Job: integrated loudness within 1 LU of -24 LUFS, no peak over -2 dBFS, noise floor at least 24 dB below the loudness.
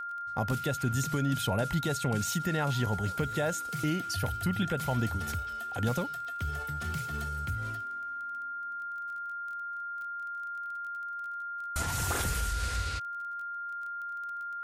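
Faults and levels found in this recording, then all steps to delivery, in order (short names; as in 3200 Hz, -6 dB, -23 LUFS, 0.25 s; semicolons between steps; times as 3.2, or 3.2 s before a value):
ticks 21/s; steady tone 1400 Hz; tone level -35 dBFS; loudness -33.0 LUFS; peak -19.0 dBFS; loudness target -24.0 LUFS
-> de-click; notch 1400 Hz, Q 30; gain +9 dB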